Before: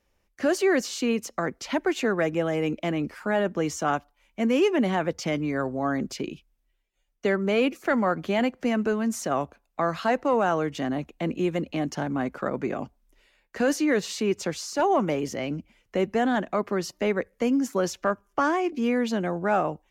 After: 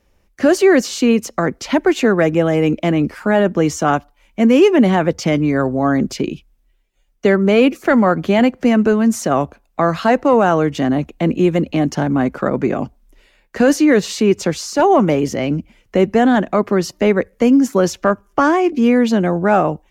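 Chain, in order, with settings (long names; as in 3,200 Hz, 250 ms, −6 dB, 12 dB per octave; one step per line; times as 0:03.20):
low-shelf EQ 430 Hz +5.5 dB
level +8 dB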